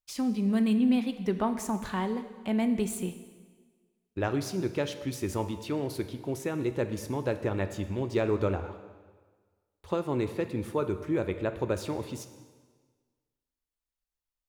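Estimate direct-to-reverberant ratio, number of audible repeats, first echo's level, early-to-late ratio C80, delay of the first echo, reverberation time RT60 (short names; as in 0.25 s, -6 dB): 9.0 dB, none, none, 12.5 dB, none, 1.5 s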